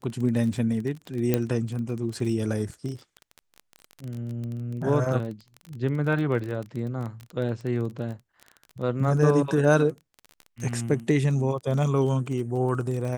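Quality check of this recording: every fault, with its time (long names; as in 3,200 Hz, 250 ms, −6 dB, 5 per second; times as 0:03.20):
surface crackle 24 per second −31 dBFS
0:01.34: click −9 dBFS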